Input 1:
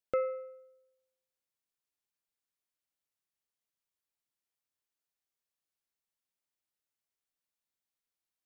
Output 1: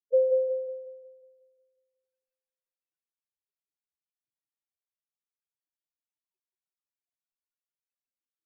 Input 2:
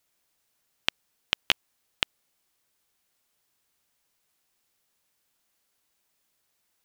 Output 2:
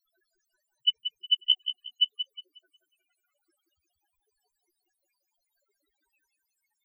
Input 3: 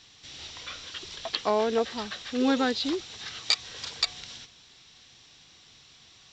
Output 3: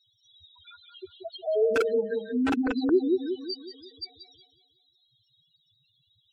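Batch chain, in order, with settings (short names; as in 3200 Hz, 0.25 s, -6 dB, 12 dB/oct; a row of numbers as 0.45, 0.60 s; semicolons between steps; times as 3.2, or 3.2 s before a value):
loudest bins only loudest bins 2; on a send: darkening echo 0.181 s, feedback 48%, low-pass 2300 Hz, level -5 dB; on the sum: wrapped overs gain 20.5 dB; spectral gate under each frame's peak -30 dB strong; limiter -25.5 dBFS; high shelf 4600 Hz -3.5 dB; small resonant body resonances 380/1500/2600 Hz, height 13 dB, ringing for 25 ms; match loudness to -27 LUFS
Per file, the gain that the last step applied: +5.5, +19.5, +1.0 dB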